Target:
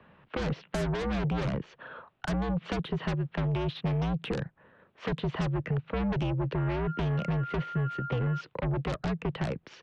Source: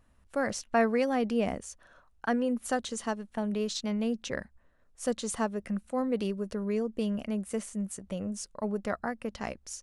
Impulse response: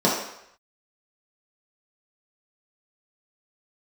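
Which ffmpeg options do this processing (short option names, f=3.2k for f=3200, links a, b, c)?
-filter_complex "[0:a]highpass=f=160:t=q:w=0.5412,highpass=f=160:t=q:w=1.307,lowpass=f=3.4k:t=q:w=0.5176,lowpass=f=3.4k:t=q:w=0.7071,lowpass=f=3.4k:t=q:w=1.932,afreqshift=-59,asettb=1/sr,asplit=3[a][b][c];[a]atrim=end=6.584[d];[b]atrim=start=6.58:end=8.41,asetpts=PTS-STARTPTS,afade=t=in:d=0.004:c=qsin,afade=t=out:st=1.826:d=0.004:c=qsin,aeval=exprs='val(0)+0.00501*sin(2*PI*1400*n/s)':c=same[e];[c]atrim=start=8.406[f];[d][e]acrossfade=d=0.004:c1=hsin:c2=qsin[g];[g][f]acrossfade=d=0.004:c1=qsin:c2=hsin,asplit=2[h][i];[i]aeval=exprs='0.211*sin(PI/2*7.94*val(0)/0.211)':c=same,volume=-9.5dB[j];[h][j]amix=inputs=2:normalize=0,acrossover=split=170|430|2300[k][l][m][n];[k]acompressor=threshold=-31dB:ratio=4[o];[l]acompressor=threshold=-34dB:ratio=4[p];[m]acompressor=threshold=-39dB:ratio=4[q];[n]acompressor=threshold=-47dB:ratio=4[r];[o][p][q][r]amix=inputs=4:normalize=0"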